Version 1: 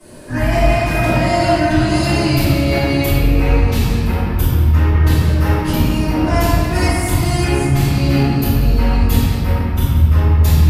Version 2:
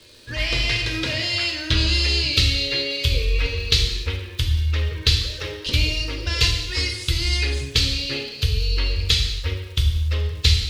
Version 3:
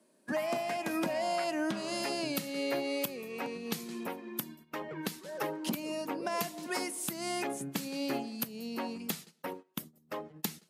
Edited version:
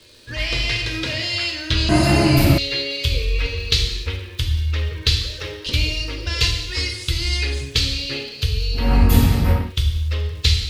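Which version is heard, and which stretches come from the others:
2
0:01.89–0:02.58: punch in from 1
0:08.83–0:09.62: punch in from 1, crossfade 0.24 s
not used: 3

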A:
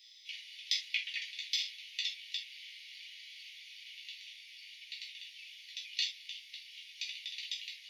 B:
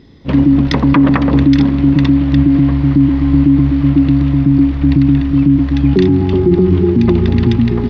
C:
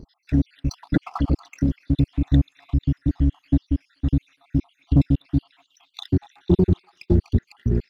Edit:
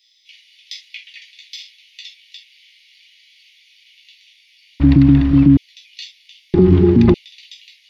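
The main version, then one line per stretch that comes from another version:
A
0:04.80–0:05.57: punch in from B
0:06.54–0:07.14: punch in from B
not used: C

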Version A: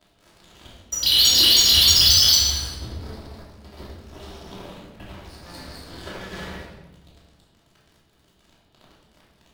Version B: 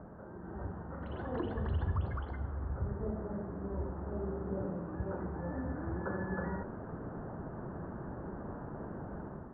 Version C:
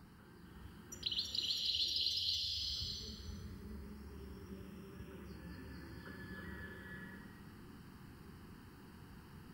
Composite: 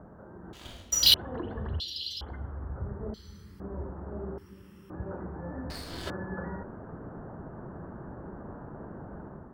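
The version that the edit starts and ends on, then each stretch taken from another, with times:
B
0:00.53–0:01.14: punch in from A
0:01.80–0:02.21: punch in from C
0:03.14–0:03.60: punch in from C
0:04.38–0:04.90: punch in from C
0:05.70–0:06.10: punch in from A

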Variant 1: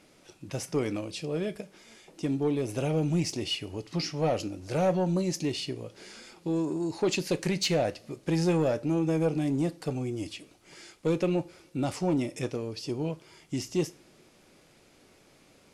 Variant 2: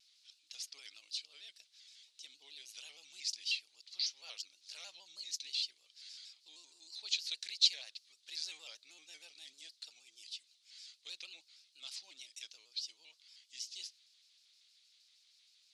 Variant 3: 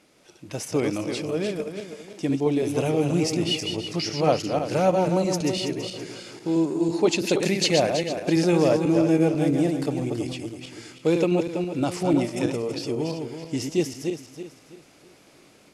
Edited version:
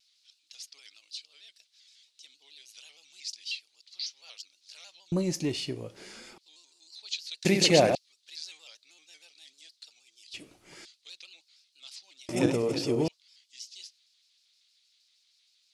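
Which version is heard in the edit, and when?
2
0:05.12–0:06.38: punch in from 1
0:07.45–0:07.95: punch in from 3
0:10.34–0:10.85: punch in from 1
0:12.29–0:13.08: punch in from 3

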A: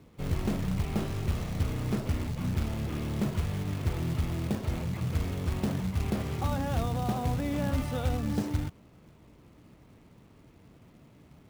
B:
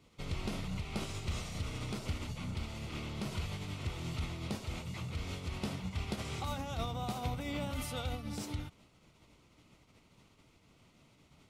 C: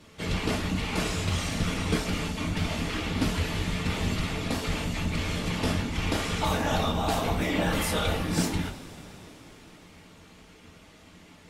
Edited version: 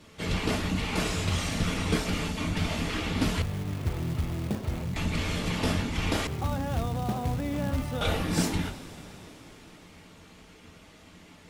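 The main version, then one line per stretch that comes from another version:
C
0:03.42–0:04.96: punch in from A
0:06.27–0:08.01: punch in from A
not used: B

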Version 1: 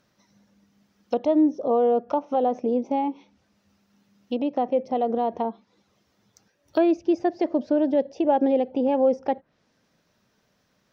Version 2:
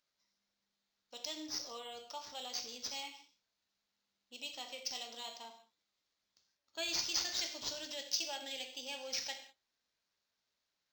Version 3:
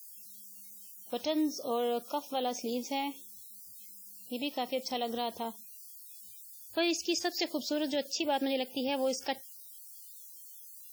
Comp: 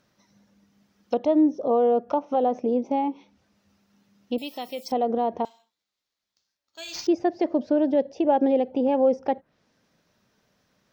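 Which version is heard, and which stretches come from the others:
1
0:04.38–0:04.92: punch in from 3
0:05.45–0:07.07: punch in from 2

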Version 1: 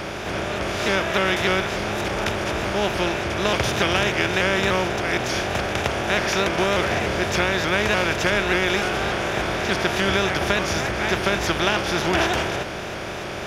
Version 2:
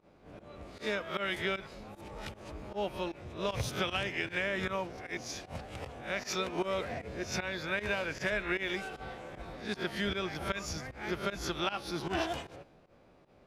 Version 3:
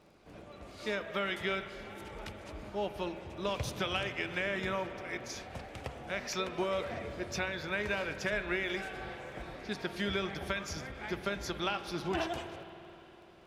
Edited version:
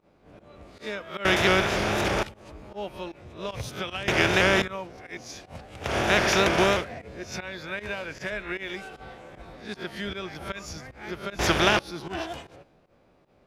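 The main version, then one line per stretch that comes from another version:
2
0:01.25–0:02.23: punch in from 1
0:04.08–0:04.62: punch in from 1
0:05.88–0:06.78: punch in from 1, crossfade 0.16 s
0:11.39–0:11.79: punch in from 1
not used: 3

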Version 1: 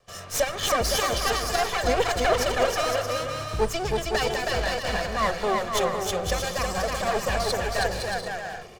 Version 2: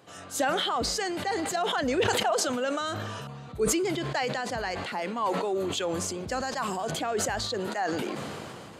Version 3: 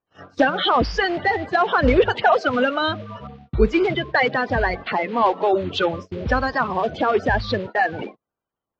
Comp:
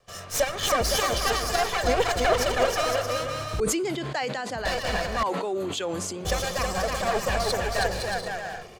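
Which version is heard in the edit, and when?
1
0:03.60–0:04.65: punch in from 2
0:05.23–0:06.25: punch in from 2
not used: 3

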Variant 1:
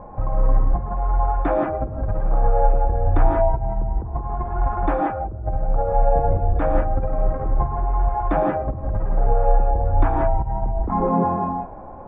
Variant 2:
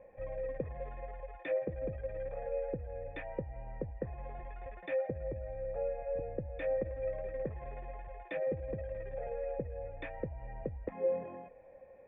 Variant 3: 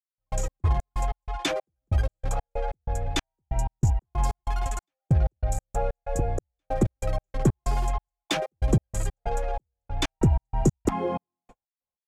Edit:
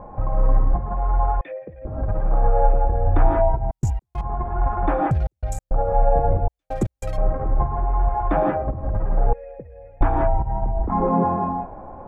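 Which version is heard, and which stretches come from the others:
1
0:01.41–0:01.85: punch in from 2
0:03.71–0:04.21: punch in from 3
0:05.11–0:05.71: punch in from 3
0:06.48–0:07.18: punch in from 3
0:09.33–0:10.01: punch in from 2

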